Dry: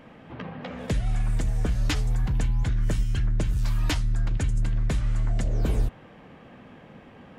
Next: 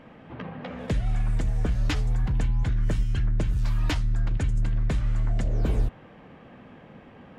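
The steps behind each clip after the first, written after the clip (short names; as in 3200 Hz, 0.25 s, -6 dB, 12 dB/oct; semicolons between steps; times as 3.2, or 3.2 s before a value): high shelf 5500 Hz -9 dB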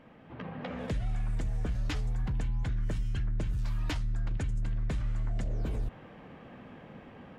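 AGC gain up to 6 dB; limiter -19 dBFS, peak gain reduction 10.5 dB; gain -7 dB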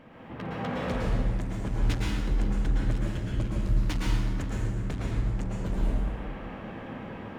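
overloaded stage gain 34.5 dB; plate-style reverb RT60 1.6 s, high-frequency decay 0.65×, pre-delay 0.1 s, DRR -5 dB; gain +4 dB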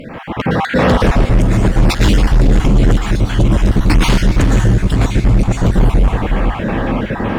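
random spectral dropouts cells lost 30%; diffused feedback echo 0.484 s, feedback 48%, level -14.5 dB; sine folder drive 10 dB, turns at -13.5 dBFS; gain +8 dB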